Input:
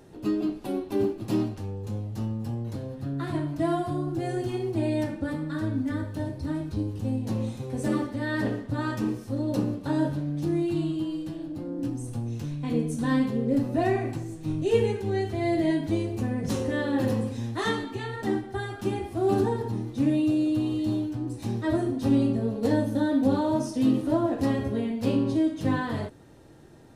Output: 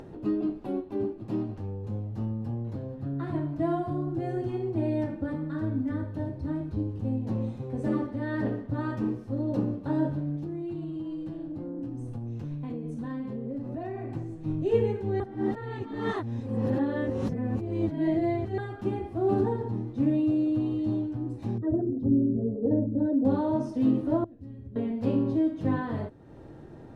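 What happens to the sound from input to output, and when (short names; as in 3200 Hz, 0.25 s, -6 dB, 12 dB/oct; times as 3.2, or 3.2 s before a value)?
0.81–1.49 gain -3.5 dB
10.36–14.13 compressor, threshold -30 dBFS
15.2–18.58 reverse
21.58–23.25 formant sharpening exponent 2
24.24–24.76 passive tone stack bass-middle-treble 10-0-1
whole clip: high shelf 2100 Hz -12 dB; upward compressor, threshold -36 dBFS; high shelf 6800 Hz -11 dB; gain -1 dB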